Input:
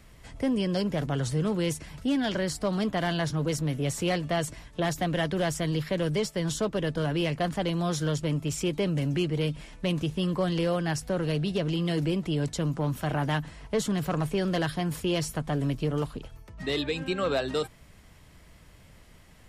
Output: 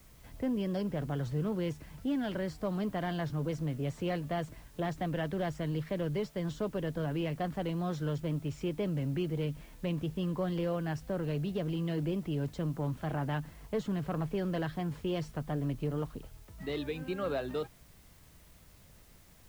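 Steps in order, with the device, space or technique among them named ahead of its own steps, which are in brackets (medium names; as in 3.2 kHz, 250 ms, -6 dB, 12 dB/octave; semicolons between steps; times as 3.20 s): cassette deck with a dirty head (tape spacing loss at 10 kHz 23 dB; wow and flutter; white noise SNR 29 dB); trim -5 dB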